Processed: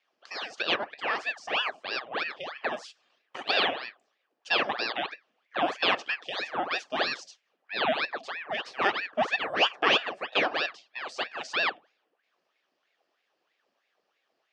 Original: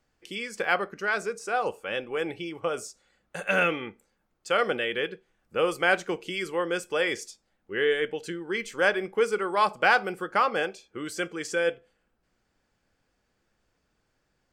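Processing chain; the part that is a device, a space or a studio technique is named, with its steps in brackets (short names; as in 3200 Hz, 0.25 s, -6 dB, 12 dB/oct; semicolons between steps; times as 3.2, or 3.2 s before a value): voice changer toy (ring modulator with a swept carrier 1200 Hz, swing 85%, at 3.1 Hz; speaker cabinet 490–5000 Hz, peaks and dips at 960 Hz -7 dB, 1400 Hz -6 dB, 2100 Hz -8 dB, 3900 Hz -5 dB); gain +5.5 dB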